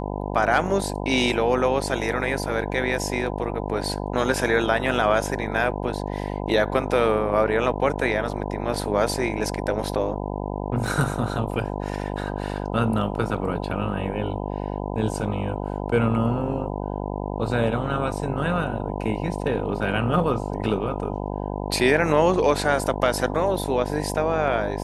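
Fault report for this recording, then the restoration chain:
mains buzz 50 Hz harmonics 20 −29 dBFS
0:10.87: drop-out 3.5 ms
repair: hum removal 50 Hz, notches 20
repair the gap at 0:10.87, 3.5 ms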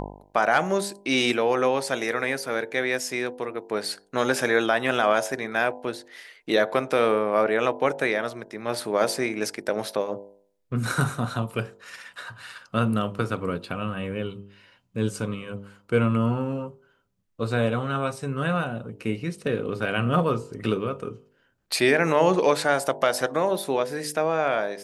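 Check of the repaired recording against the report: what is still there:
none of them is left

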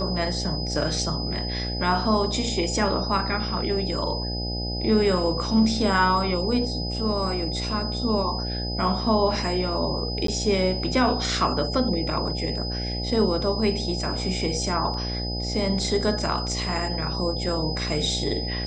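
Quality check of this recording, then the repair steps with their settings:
mains buzz 60 Hz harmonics 14 −30 dBFS
whistle 5,000 Hz −31 dBFS
0:10.27–0:10.28: drop-out 13 ms
0:14.94: drop-out 2.1 ms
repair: notch filter 5,000 Hz, Q 30
hum removal 60 Hz, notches 14
repair the gap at 0:10.27, 13 ms
repair the gap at 0:14.94, 2.1 ms

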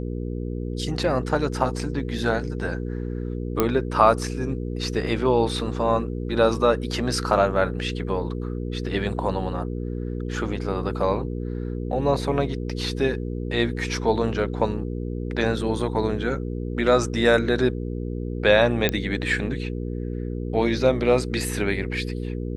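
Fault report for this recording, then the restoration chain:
mains hum 60 Hz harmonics 8 −29 dBFS
0:03.60: click −6 dBFS
0:18.89: click −6 dBFS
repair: click removal
hum removal 60 Hz, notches 8

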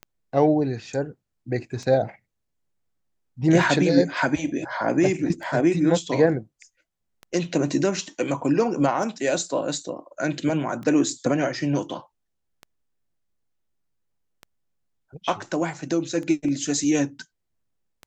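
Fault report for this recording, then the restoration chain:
scratch tick 33 1/3 rpm −23 dBFS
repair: click removal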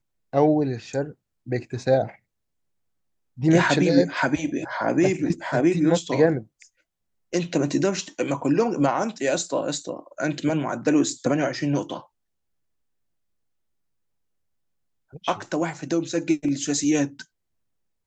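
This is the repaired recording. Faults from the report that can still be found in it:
none of them is left

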